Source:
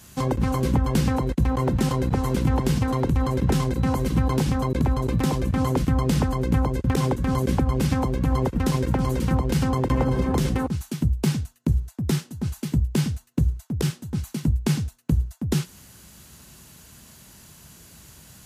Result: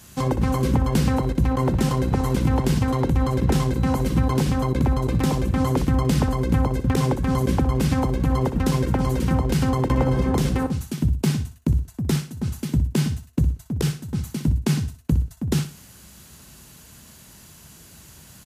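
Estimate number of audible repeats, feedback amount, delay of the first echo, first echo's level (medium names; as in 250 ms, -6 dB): 3, 30%, 61 ms, -12.0 dB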